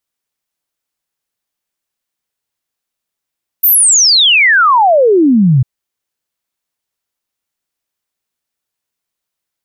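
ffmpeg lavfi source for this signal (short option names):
-f lavfi -i "aevalsrc='0.562*clip(min(t,2-t)/0.01,0,1)*sin(2*PI*15000*2/log(120/15000)*(exp(log(120/15000)*t/2)-1))':d=2:s=44100"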